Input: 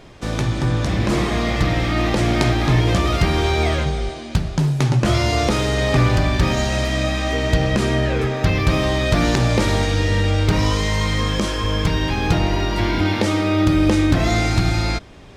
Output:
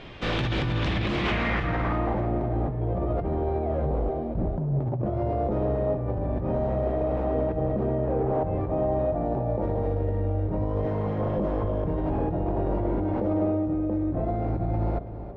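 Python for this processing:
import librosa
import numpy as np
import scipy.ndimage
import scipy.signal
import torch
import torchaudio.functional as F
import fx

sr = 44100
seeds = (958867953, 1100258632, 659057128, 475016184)

y = fx.peak_eq(x, sr, hz=800.0, db=8.0, octaves=0.48, at=(8.12, 9.63))
y = fx.highpass(y, sr, hz=89.0, slope=24, at=(10.85, 11.38))
y = fx.over_compress(y, sr, threshold_db=-22.0, ratio=-1.0)
y = 10.0 ** (-17.0 / 20.0) * (np.abs((y / 10.0 ** (-17.0 / 20.0) + 3.0) % 4.0 - 2.0) - 1.0)
y = fx.filter_sweep_lowpass(y, sr, from_hz=3100.0, to_hz=620.0, start_s=1.2, end_s=2.34, q=1.9)
y = fx.echo_feedback(y, sr, ms=328, feedback_pct=28, wet_db=-13.0)
y = y * 10.0 ** (-4.0 / 20.0)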